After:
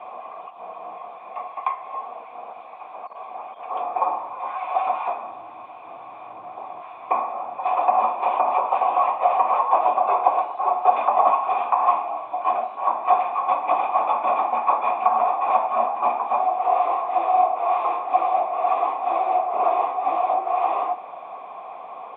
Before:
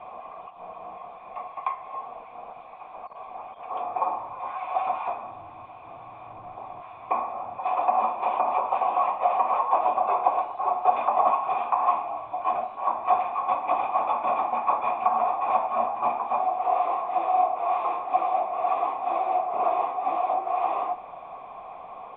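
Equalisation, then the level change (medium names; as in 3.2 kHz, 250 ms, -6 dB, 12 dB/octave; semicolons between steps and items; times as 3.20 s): high-pass 260 Hz 12 dB/octave; +4.0 dB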